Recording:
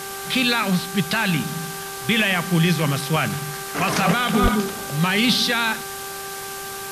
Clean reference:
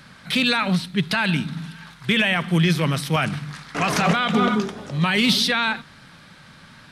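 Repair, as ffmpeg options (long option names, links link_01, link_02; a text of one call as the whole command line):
ffmpeg -i in.wav -filter_complex "[0:a]bandreject=frequency=392.3:width_type=h:width=4,bandreject=frequency=784.6:width_type=h:width=4,bandreject=frequency=1176.9:width_type=h:width=4,bandreject=frequency=1569.2:width_type=h:width=4,asplit=3[link_01][link_02][link_03];[link_01]afade=type=out:start_time=4.42:duration=0.02[link_04];[link_02]highpass=frequency=140:width=0.5412,highpass=frequency=140:width=1.3066,afade=type=in:start_time=4.42:duration=0.02,afade=type=out:start_time=4.54:duration=0.02[link_05];[link_03]afade=type=in:start_time=4.54:duration=0.02[link_06];[link_04][link_05][link_06]amix=inputs=3:normalize=0,afftdn=noise_reduction=15:noise_floor=-32" out.wav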